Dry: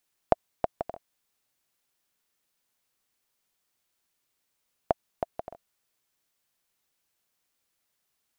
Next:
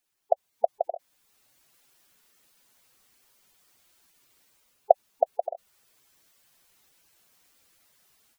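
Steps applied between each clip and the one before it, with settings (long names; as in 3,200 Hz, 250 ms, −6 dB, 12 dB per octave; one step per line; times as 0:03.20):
gate on every frequency bin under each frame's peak −10 dB strong
automatic gain control gain up to 15 dB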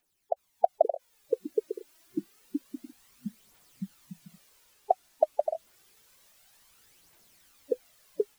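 brickwall limiter −10 dBFS, peak gain reduction 8.5 dB
phase shifter 0.28 Hz, delay 3.5 ms, feedback 61%
delay with pitch and tempo change per echo 367 ms, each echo −7 semitones, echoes 3, each echo −6 dB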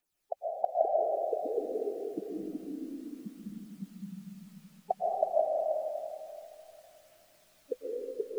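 comb and all-pass reverb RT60 2.7 s, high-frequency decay 0.55×, pre-delay 90 ms, DRR −4.5 dB
level −7 dB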